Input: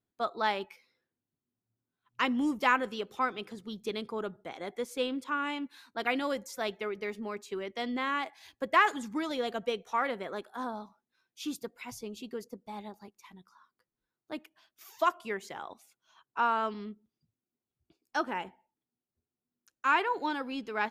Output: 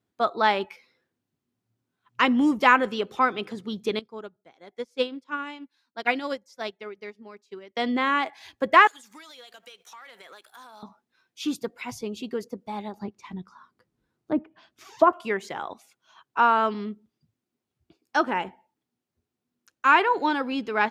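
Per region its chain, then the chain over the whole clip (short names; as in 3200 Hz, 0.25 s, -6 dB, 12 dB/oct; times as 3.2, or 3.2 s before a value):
3.99–7.77 bell 5200 Hz +8.5 dB 0.65 oct + notch 1200 Hz, Q 23 + upward expander 2.5:1, over -43 dBFS
8.87–10.83 differentiator + compressor 12:1, threshold -56 dBFS + sample leveller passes 2
12.97–15.13 treble ducked by the level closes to 1100 Hz, closed at -39 dBFS + low shelf 440 Hz +11 dB
whole clip: HPF 58 Hz; high shelf 7500 Hz -10 dB; gain +8.5 dB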